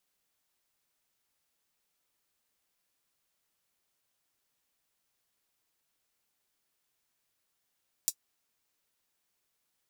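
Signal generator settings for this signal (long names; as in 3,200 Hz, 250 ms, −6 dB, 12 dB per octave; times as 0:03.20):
closed synth hi-hat, high-pass 5,900 Hz, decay 0.07 s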